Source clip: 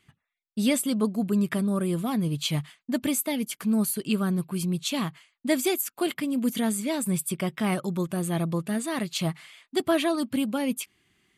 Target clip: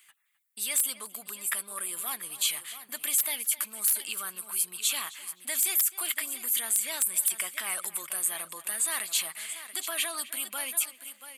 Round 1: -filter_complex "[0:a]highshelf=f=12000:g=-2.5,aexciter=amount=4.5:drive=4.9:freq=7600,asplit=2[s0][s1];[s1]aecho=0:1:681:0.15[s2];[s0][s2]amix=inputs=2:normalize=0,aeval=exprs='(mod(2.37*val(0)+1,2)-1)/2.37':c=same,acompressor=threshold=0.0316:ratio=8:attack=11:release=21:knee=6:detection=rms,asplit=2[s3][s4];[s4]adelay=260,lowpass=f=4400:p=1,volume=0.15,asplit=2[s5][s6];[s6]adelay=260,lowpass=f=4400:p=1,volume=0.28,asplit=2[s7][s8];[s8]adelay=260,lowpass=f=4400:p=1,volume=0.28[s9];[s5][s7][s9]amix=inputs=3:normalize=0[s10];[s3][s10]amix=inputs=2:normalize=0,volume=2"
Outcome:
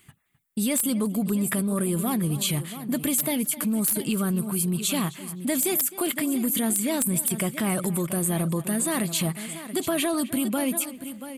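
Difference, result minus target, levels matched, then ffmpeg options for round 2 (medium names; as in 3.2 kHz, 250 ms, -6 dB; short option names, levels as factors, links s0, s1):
1 kHz band +4.0 dB
-filter_complex "[0:a]highshelf=f=12000:g=-2.5,aexciter=amount=4.5:drive=4.9:freq=7600,asplit=2[s0][s1];[s1]aecho=0:1:681:0.15[s2];[s0][s2]amix=inputs=2:normalize=0,aeval=exprs='(mod(2.37*val(0)+1,2)-1)/2.37':c=same,acompressor=threshold=0.0316:ratio=8:attack=11:release=21:knee=6:detection=rms,highpass=1400,asplit=2[s3][s4];[s4]adelay=260,lowpass=f=4400:p=1,volume=0.15,asplit=2[s5][s6];[s6]adelay=260,lowpass=f=4400:p=1,volume=0.28,asplit=2[s7][s8];[s8]adelay=260,lowpass=f=4400:p=1,volume=0.28[s9];[s5][s7][s9]amix=inputs=3:normalize=0[s10];[s3][s10]amix=inputs=2:normalize=0,volume=2"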